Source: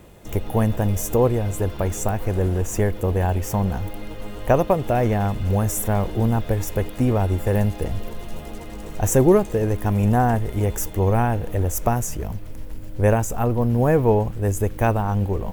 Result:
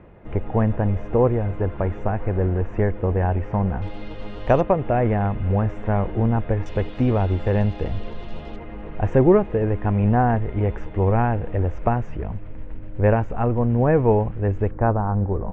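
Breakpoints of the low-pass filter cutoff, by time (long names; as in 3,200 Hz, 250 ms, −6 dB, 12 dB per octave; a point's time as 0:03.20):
low-pass filter 24 dB per octave
2,200 Hz
from 0:03.82 4,500 Hz
from 0:04.61 2,400 Hz
from 0:06.66 4,100 Hz
from 0:08.56 2,500 Hz
from 0:14.71 1,500 Hz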